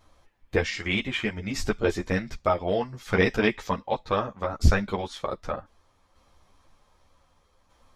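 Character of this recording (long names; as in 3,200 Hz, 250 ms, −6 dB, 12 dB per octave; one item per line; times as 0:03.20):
tremolo saw down 0.65 Hz, depth 45%
a shimmering, thickened sound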